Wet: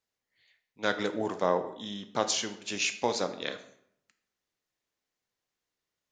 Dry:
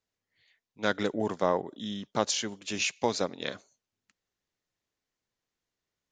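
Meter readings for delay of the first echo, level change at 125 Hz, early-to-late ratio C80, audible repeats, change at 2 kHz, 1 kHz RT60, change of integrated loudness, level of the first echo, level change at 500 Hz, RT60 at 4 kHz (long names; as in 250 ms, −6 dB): no echo audible, −3.5 dB, 14.5 dB, no echo audible, +0.5 dB, 0.70 s, 0.0 dB, no echo audible, −0.5 dB, 0.50 s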